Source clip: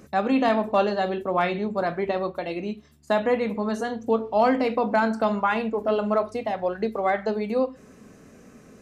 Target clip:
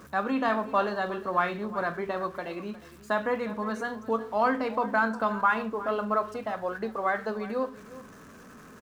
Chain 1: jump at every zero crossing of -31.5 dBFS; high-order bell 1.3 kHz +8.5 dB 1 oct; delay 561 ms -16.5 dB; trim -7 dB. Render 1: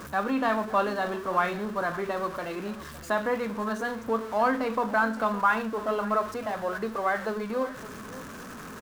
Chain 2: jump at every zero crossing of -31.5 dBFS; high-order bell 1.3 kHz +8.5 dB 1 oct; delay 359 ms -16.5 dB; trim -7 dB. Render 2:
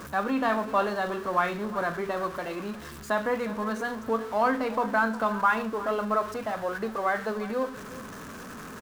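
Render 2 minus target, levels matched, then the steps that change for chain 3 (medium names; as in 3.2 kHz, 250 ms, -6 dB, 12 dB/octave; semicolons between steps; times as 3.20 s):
jump at every zero crossing: distortion +11 dB
change: jump at every zero crossing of -43 dBFS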